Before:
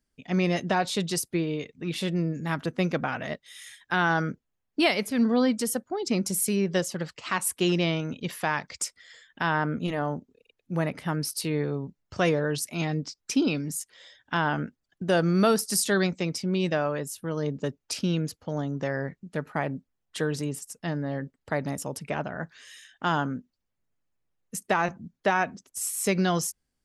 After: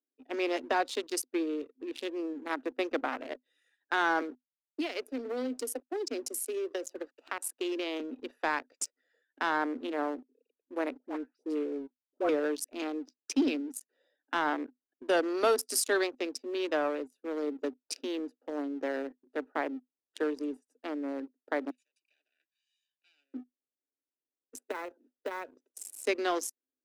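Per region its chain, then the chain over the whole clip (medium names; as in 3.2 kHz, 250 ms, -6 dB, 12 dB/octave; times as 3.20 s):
4.21–8.00 s: small samples zeroed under -50 dBFS + high-pass 280 Hz 24 dB/octave + compression 12:1, threshold -25 dBFS
10.97–12.29 s: gate -34 dBFS, range -18 dB + tape spacing loss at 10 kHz 23 dB + phase dispersion highs, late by 129 ms, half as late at 1.5 kHz
21.70–23.34 s: comb filter that takes the minimum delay 1.3 ms + elliptic band-pass 2.4–9.6 kHz
24.55–26.07 s: comb 2 ms, depth 61% + compression 4:1, threshold -29 dBFS + modulation noise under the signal 20 dB
whole clip: local Wiener filter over 41 samples; Chebyshev high-pass 250 Hz, order 8; waveshaping leveller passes 1; trim -4.5 dB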